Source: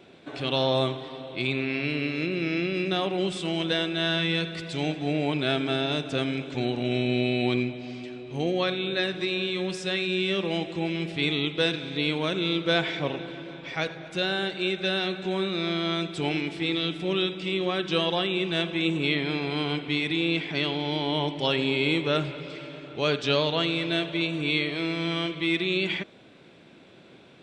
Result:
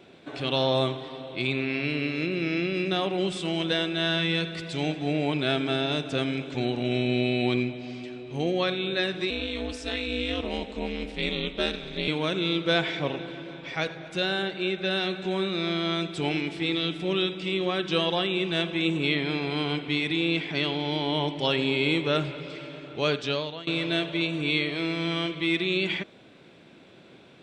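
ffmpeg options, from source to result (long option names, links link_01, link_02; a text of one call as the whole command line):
ffmpeg -i in.wav -filter_complex "[0:a]asettb=1/sr,asplit=3[link_01][link_02][link_03];[link_01]atrim=end=9.304[link_04];[link_02]atrim=start=9.3:end=12.08,asetpts=PTS-STARTPTS,afade=type=in:duration=0.004:curve=qsin,afade=type=out:start_time=2.776:duration=0.004:curve=qsin,aeval=exprs='val(0)*sin(2*PI*120*n/s)':channel_layout=same[link_05];[link_03]atrim=start=12.076[link_06];[link_04][link_05]acrossfade=duration=0.004:curve1=hsin:curve2=qsin[link_07];[link_07][link_06]acrossfade=duration=0.004:curve1=qsin:curve2=hsin,asettb=1/sr,asplit=3[link_08][link_09][link_10];[link_08]atrim=end=14.424[link_11];[link_09]atrim=start=14.42:end=14.91,asetpts=PTS-STARTPTS,afade=type=in:duration=0.004:curve=qsin,afade=type=out:start_time=0.486:duration=0.004:curve=qsin,lowpass=frequency=3700:poles=1[link_12];[link_10]atrim=start=14.906[link_13];[link_11][link_12]acrossfade=duration=0.004:curve1=hsin:curve2=qsin[link_14];[link_14][link_13]acrossfade=duration=0.004:curve1=qsin:curve2=hsin,asplit=2[link_15][link_16];[link_15]atrim=end=23.67,asetpts=PTS-STARTPTS,afade=type=out:start_time=23.06:duration=0.61:silence=0.1[link_17];[link_16]atrim=start=23.67,asetpts=PTS-STARTPTS,afade=type=in:duration=0.004:curve=hsin:silence=0.1[link_18];[link_17][link_18]concat=n=2:v=0:a=1" out.wav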